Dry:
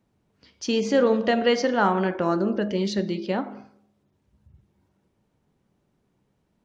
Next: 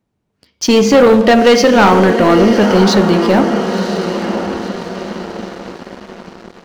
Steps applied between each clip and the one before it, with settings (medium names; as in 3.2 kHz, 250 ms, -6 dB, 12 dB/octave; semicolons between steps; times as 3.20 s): echo that smears into a reverb 1007 ms, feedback 52%, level -10 dB; waveshaping leveller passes 3; trim +5 dB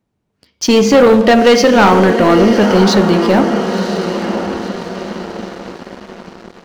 no audible change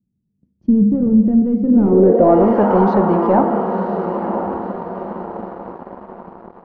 low-pass sweep 200 Hz -> 940 Hz, 1.63–2.47 s; trim -5 dB